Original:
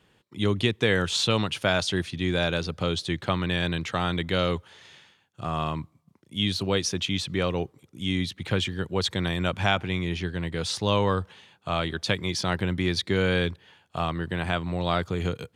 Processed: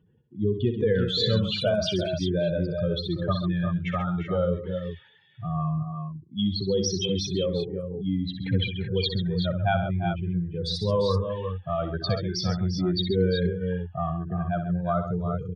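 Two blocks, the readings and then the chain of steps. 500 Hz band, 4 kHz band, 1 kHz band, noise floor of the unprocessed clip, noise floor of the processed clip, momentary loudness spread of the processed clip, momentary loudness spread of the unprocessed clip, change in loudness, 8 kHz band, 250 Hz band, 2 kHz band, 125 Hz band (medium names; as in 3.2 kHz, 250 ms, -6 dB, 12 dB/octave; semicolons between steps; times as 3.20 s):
+2.0 dB, -2.5 dB, -2.5 dB, -65 dBFS, -54 dBFS, 7 LU, 8 LU, 0.0 dB, -4.5 dB, +1.5 dB, -8.5 dB, +2.5 dB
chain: spectral contrast enhancement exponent 3; multi-tap echo 63/134/348/381 ms -9.5/-11.5/-10/-8 dB; tape noise reduction on one side only decoder only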